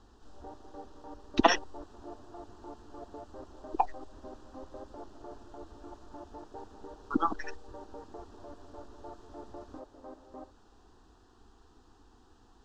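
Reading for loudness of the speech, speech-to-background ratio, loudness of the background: −31.0 LKFS, 19.0 dB, −50.0 LKFS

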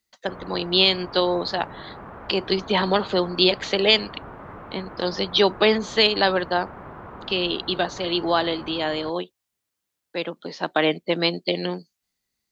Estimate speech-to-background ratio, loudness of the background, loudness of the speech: 18.0 dB, −40.5 LKFS, −22.5 LKFS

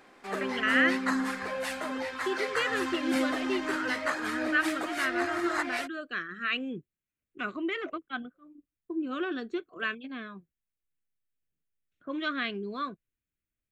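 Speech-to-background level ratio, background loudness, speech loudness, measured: −1.0 dB, −32.0 LKFS, −33.0 LKFS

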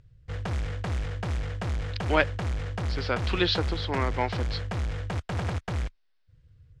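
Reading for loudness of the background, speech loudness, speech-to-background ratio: −32.5 LKFS, −29.0 LKFS, 3.5 dB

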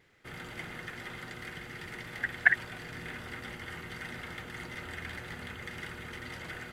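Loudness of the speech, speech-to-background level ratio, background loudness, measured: −28.0 LKFS, 13.5 dB, −41.5 LKFS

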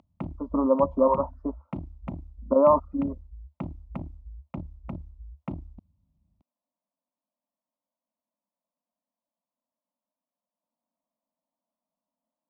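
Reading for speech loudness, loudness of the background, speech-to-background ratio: −24.0 LKFS, −41.0 LKFS, 17.0 dB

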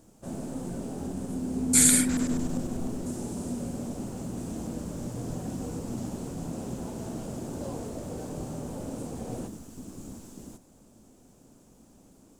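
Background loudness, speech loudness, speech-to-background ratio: −34.5 LKFS, −26.5 LKFS, 8.0 dB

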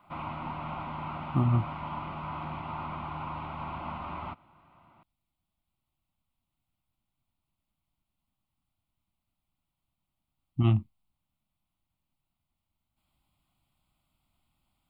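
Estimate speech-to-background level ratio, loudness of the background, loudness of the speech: 10.0 dB, −38.0 LKFS, −28.0 LKFS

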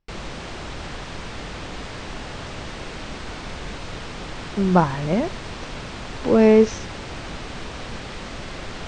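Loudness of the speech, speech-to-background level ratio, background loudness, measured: −18.5 LKFS, 15.5 dB, −34.0 LKFS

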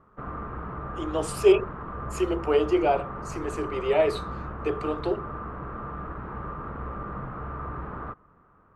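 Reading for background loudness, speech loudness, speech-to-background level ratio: −36.5 LKFS, −26.0 LKFS, 10.5 dB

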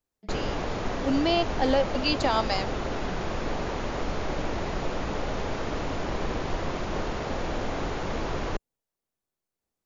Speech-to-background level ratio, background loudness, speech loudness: 5.5 dB, −32.0 LKFS, −26.5 LKFS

